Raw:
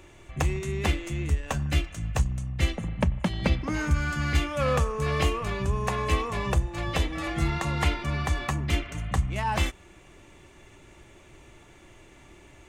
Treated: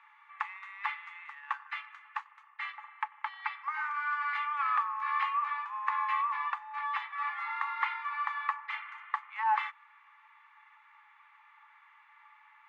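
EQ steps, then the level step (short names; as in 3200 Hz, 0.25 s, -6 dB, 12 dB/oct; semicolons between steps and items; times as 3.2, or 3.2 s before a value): rippled Chebyshev high-pass 830 Hz, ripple 9 dB; air absorption 370 m; resonant high shelf 2400 Hz -6.5 dB, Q 3; +6.0 dB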